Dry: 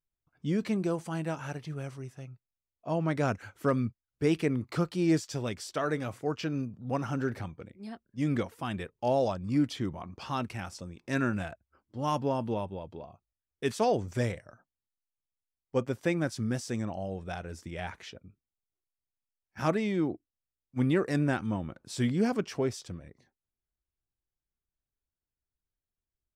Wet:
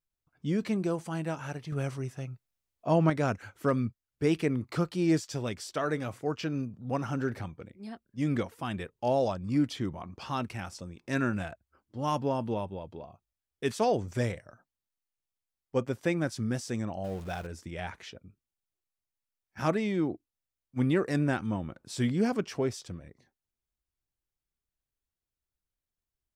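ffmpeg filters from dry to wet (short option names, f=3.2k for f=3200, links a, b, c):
-filter_complex "[0:a]asettb=1/sr,asplit=3[a][b][c];[a]atrim=end=1.724[d];[b]atrim=start=1.72:end=3.1,asetpts=PTS-STARTPTS,afade=t=in:d=0.004:c=qsin,afade=t=out:st=1.376:d=0.004:c=qsin,acontrast=49[e];[c]atrim=start=3.096[f];[d][e]acrossfade=d=0.004:c1=hsin:c2=qsin[g];[g][f]acrossfade=d=0.004:c1=qsin:c2=hsin,asettb=1/sr,asplit=3[h][i][j];[h]atrim=end=17.044[k];[i]atrim=start=17.04:end=17.47,asetpts=PTS-STARTPTS,afade=t=in:d=0.004:c=qsin,afade=t=out:st=0.426:d=0.004:c=qsin,aeval=exprs='val(0)+0.5*0.00668*sgn(val(0))':c=same[l];[j]atrim=start=17.466[m];[k][l]acrossfade=d=0.004:c1=hsin:c2=qsin[n];[n][m]acrossfade=d=0.004:c1=qsin:c2=hsin"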